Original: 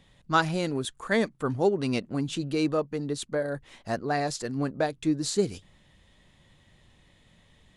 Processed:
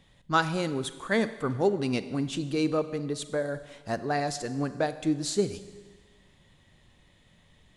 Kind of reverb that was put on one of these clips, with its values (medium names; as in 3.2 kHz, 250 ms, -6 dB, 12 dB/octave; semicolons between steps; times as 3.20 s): Schroeder reverb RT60 1.4 s, combs from 32 ms, DRR 12.5 dB; trim -1 dB